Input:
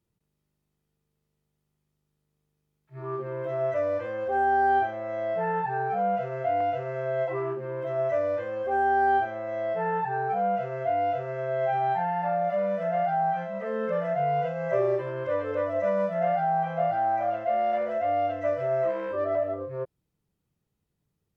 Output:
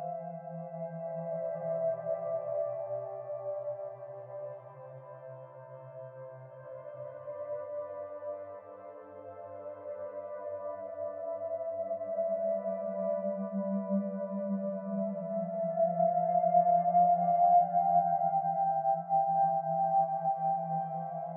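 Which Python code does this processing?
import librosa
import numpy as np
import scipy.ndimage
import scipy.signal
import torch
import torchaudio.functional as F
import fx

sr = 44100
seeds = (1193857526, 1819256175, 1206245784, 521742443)

y = fx.double_bandpass(x, sr, hz=370.0, octaves=1.9)
y = fx.paulstretch(y, sr, seeds[0], factor=9.7, window_s=0.25, from_s=14.54)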